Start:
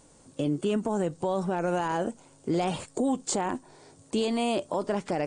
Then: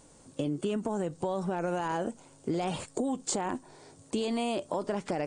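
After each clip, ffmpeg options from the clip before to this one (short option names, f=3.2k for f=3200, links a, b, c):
-af "acompressor=threshold=-27dB:ratio=6"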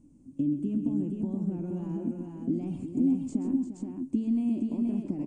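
-filter_complex "[0:a]firequalizer=gain_entry='entry(160,0);entry(270,9);entry(450,-18);entry(1700,-28);entry(2500,-19);entry(3700,-29);entry(6200,-21)':delay=0.05:min_phase=1,asplit=2[a][b];[b]aecho=0:1:131|348|475:0.299|0.335|0.631[c];[a][c]amix=inputs=2:normalize=0"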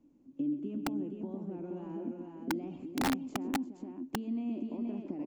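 -filter_complex "[0:a]acrossover=split=290 4300:gain=0.141 1 0.178[a][b][c];[a][b][c]amix=inputs=3:normalize=0,aresample=16000,aresample=44100,aeval=exprs='(mod(17.8*val(0)+1,2)-1)/17.8':c=same"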